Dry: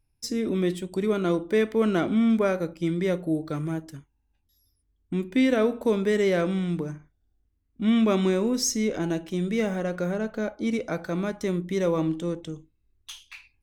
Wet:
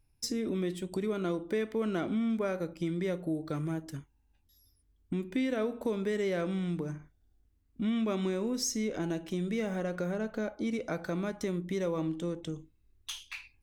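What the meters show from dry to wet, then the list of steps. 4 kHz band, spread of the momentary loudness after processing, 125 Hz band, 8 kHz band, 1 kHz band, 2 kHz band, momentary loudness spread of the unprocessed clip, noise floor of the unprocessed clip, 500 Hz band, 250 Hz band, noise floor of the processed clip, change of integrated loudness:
-6.0 dB, 9 LU, -6.5 dB, -6.5 dB, -7.5 dB, -7.5 dB, 10 LU, -72 dBFS, -8.0 dB, -7.5 dB, -70 dBFS, -7.5 dB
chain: compression 2.5:1, threshold -36 dBFS, peak gain reduction 12 dB; trim +2 dB

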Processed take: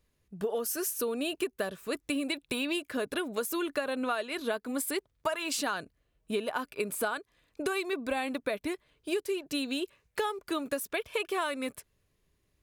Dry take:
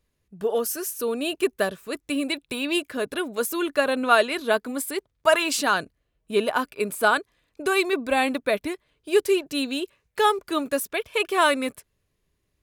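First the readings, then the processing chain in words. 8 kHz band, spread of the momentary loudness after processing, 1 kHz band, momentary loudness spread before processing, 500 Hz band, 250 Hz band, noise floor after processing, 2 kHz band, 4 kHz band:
-5.5 dB, 6 LU, -11.5 dB, 9 LU, -9.0 dB, -6.0 dB, -76 dBFS, -10.0 dB, -8.0 dB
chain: compression 12:1, threshold -28 dBFS, peak gain reduction 16.5 dB

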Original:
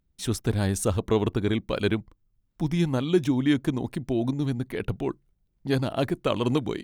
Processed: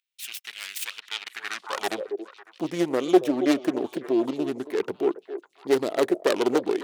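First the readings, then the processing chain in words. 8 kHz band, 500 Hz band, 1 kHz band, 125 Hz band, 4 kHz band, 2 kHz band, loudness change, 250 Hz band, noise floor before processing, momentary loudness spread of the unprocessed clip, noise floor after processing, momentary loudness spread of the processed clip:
-1.0 dB, +3.5 dB, +3.5 dB, -18.5 dB, +1.5 dB, +2.5 dB, 0.0 dB, -0.5 dB, -72 dBFS, 8 LU, -63 dBFS, 14 LU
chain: self-modulated delay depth 0.53 ms; repeats whose band climbs or falls 276 ms, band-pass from 490 Hz, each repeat 1.4 oct, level -9 dB; high-pass sweep 2.6 kHz -> 390 Hz, 1.24–2.11 s

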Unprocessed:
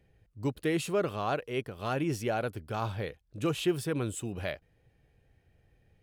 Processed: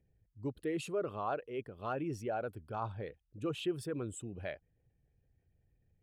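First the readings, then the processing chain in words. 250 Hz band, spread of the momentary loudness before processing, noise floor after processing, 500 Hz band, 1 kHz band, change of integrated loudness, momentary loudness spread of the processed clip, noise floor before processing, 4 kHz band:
-7.0 dB, 7 LU, -77 dBFS, -5.5 dB, -4.5 dB, -6.5 dB, 8 LU, -70 dBFS, -9.0 dB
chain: resonances exaggerated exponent 1.5; dynamic bell 1.1 kHz, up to +4 dB, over -43 dBFS, Q 0.84; trim -7.5 dB

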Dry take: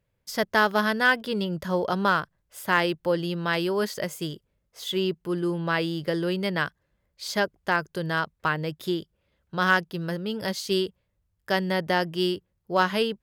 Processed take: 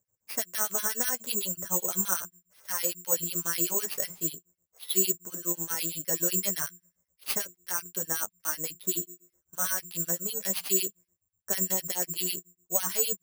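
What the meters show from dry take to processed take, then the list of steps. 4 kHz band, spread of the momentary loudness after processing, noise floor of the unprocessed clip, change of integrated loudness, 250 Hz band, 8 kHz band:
-6.0 dB, 7 LU, -75 dBFS, -2.0 dB, -12.0 dB, +16.5 dB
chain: frequency weighting ITU-R 468; level-controlled noise filter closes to 1.3 kHz, open at -18 dBFS; tilt EQ -4.5 dB/octave; de-hum 176.1 Hz, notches 2; peak limiter -18 dBFS, peak gain reduction 12 dB; flange 0.36 Hz, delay 9.5 ms, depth 3.2 ms, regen -13%; harmonic tremolo 8 Hz, depth 100%, crossover 1.8 kHz; careless resampling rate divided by 6×, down none, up zero stuff

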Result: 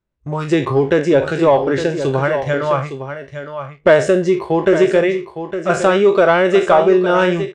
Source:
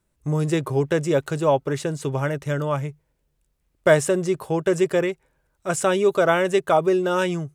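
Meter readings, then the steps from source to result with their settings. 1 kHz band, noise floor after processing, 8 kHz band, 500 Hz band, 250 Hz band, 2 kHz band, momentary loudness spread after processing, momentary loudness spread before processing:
+7.5 dB, -45 dBFS, -3.0 dB, +7.5 dB, +7.0 dB, +7.5 dB, 14 LU, 8 LU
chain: spectral sustain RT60 0.35 s; spectral noise reduction 12 dB; waveshaping leveller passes 1; in parallel at -1.5 dB: compression, threshold -22 dBFS, peak gain reduction 12.5 dB; on the sum: distance through air 150 m; on a send: delay 860 ms -10 dB; on the sum: trim +1.5 dB

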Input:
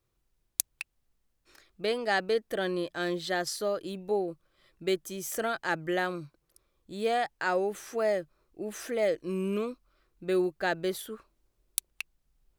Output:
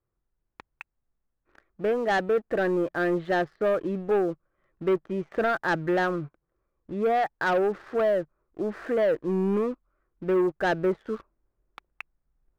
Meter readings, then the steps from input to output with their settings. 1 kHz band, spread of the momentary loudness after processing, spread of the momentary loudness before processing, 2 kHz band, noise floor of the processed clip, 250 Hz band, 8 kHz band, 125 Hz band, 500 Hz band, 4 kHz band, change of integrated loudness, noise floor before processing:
+5.0 dB, 12 LU, 14 LU, +3.0 dB, -80 dBFS, +6.0 dB, under -15 dB, +6.5 dB, +5.0 dB, -5.0 dB, +5.0 dB, -77 dBFS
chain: low-pass 1.8 kHz 24 dB/octave; waveshaping leveller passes 2; in parallel at -1 dB: gain riding within 4 dB 0.5 s; on the sum: trim -4.5 dB

